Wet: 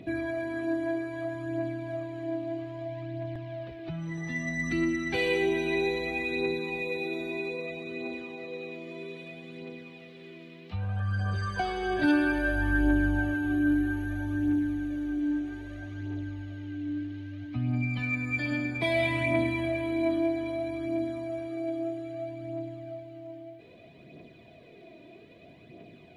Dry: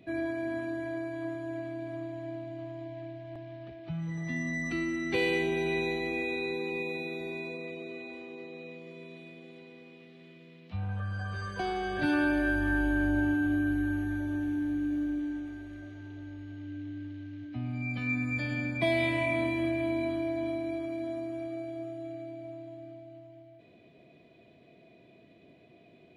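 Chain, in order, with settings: in parallel at +2 dB: compression, threshold -41 dBFS, peak gain reduction 16 dB; on the sum: phaser 0.62 Hz, delay 3.4 ms, feedback 46%; trim -1.5 dB

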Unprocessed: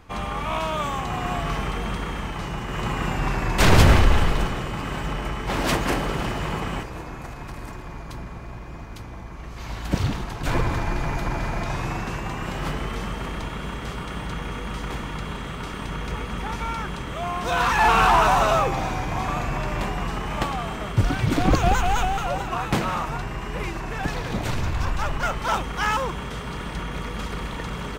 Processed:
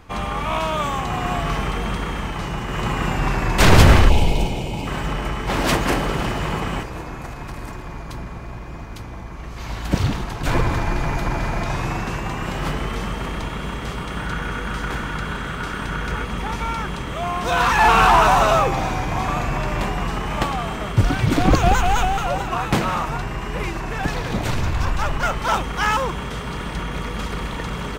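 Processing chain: 4.09–4.87 s: time-frequency box 1–2.1 kHz -16 dB; 14.17–16.25 s: peaking EQ 1.5 kHz +9.5 dB 0.32 oct; trim +3.5 dB

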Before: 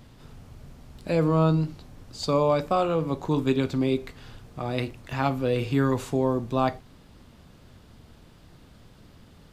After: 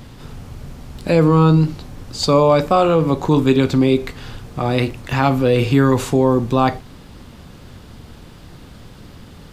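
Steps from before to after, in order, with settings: band-stop 640 Hz, Q 18; in parallel at 0 dB: peak limiter -20.5 dBFS, peak gain reduction 10.5 dB; on the sum: trim +6 dB

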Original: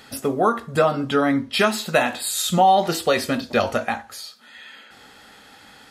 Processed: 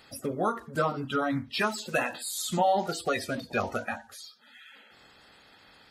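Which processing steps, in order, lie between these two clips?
coarse spectral quantiser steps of 30 dB; trim -8.5 dB

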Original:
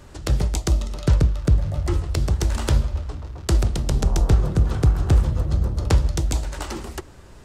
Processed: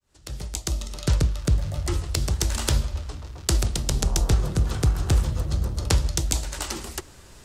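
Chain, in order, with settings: fade-in on the opening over 1.16 s; treble shelf 2.4 kHz +11.5 dB; trim -4 dB

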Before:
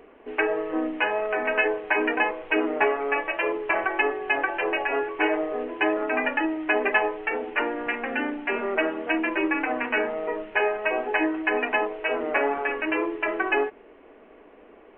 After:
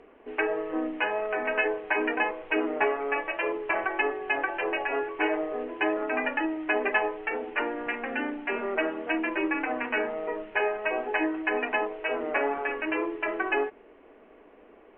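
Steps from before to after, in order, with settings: distance through air 53 m; trim -3 dB

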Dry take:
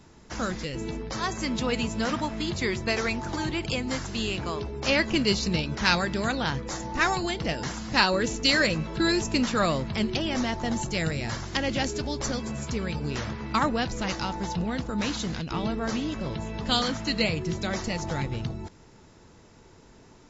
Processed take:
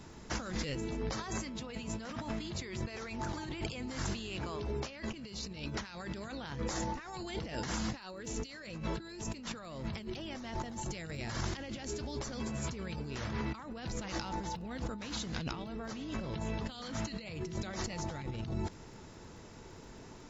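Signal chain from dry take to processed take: compressor with a negative ratio -36 dBFS, ratio -1; crackle 15 per s -51 dBFS; trim -4.5 dB

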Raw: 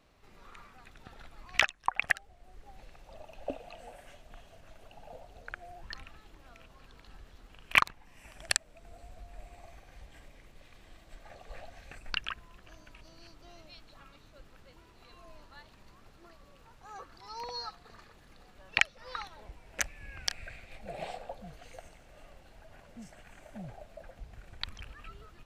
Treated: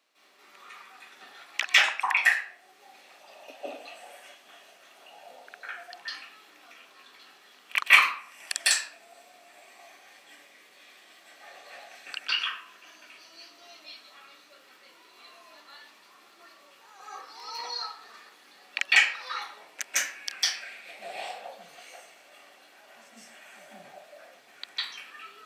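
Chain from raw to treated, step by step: high-pass 250 Hz 24 dB/octave; tilt shelf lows -7 dB; reverse; upward compressor, threshold -58 dBFS; reverse; reverberation RT60 0.55 s, pre-delay 148 ms, DRR -12.5 dB; trim -9 dB

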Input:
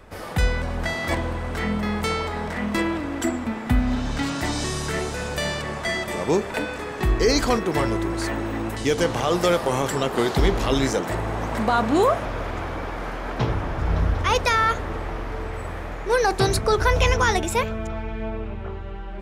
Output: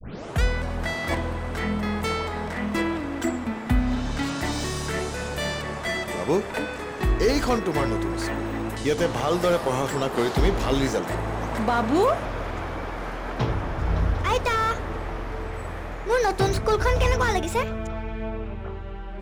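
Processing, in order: tape start-up on the opening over 0.42 s; slew-rate limiter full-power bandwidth 170 Hz; trim -1.5 dB

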